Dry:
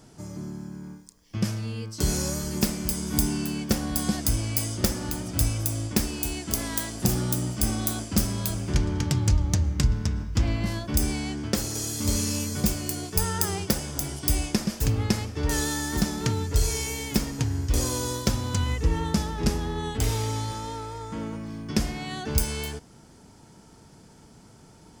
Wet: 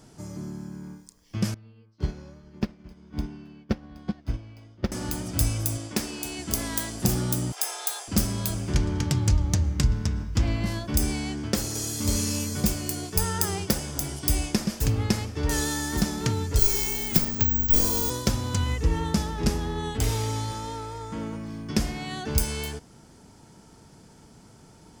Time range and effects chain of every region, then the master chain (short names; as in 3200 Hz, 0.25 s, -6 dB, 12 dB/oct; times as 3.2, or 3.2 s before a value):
1.54–4.92 air absorption 280 m + upward expander 2.5:1, over -34 dBFS
5.77–6.39 HPF 270 Hz 6 dB/oct + high shelf 11000 Hz -9 dB
7.52–8.08 HPF 500 Hz 24 dB/oct + frequency shift +130 Hz + comb 2.9 ms, depth 31%
16.59–18.1 frequency shift -36 Hz + careless resampling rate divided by 2×, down none, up zero stuff
whole clip: dry